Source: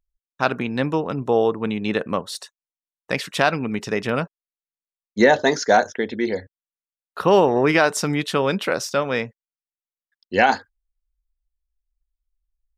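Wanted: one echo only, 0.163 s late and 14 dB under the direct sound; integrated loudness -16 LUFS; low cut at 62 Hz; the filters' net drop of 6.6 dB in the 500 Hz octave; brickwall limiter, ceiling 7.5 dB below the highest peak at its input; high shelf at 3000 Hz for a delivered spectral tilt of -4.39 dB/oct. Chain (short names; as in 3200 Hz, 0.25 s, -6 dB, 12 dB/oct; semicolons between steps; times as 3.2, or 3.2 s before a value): HPF 62 Hz; bell 500 Hz -8 dB; high shelf 3000 Hz -7 dB; limiter -12.5 dBFS; echo 0.163 s -14 dB; gain +11 dB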